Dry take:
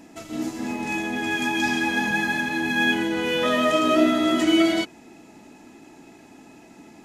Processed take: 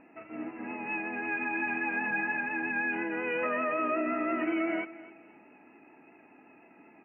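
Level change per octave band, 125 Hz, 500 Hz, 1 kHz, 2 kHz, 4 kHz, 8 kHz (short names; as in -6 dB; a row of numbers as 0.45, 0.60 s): -15.5 dB, -9.5 dB, -7.5 dB, -6.5 dB, -27.5 dB, under -40 dB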